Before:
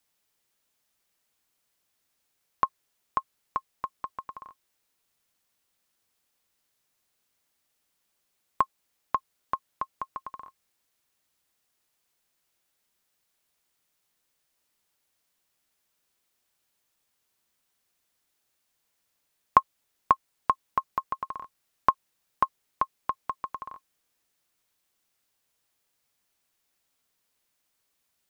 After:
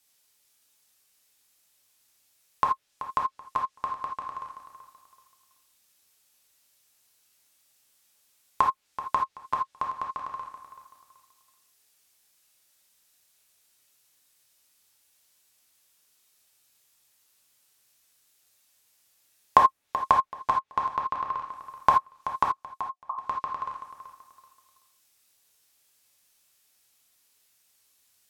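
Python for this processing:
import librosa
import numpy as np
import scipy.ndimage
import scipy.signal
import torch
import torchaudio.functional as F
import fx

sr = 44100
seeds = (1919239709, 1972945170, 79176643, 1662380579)

p1 = fx.env_lowpass_down(x, sr, base_hz=1600.0, full_db=-27.0)
p2 = fx.high_shelf(p1, sr, hz=2600.0, db=10.0)
p3 = fx.rider(p2, sr, range_db=4, speed_s=0.5)
p4 = p2 + (p3 * librosa.db_to_amplitude(-2.5))
p5 = fx.formant_cascade(p4, sr, vowel='a', at=(22.43, 23.1))
p6 = p5 + fx.echo_feedback(p5, sr, ms=381, feedback_pct=29, wet_db=-12.5, dry=0)
p7 = fx.rev_gated(p6, sr, seeds[0], gate_ms=100, shape='flat', drr_db=0.5)
y = p7 * librosa.db_to_amplitude(-7.0)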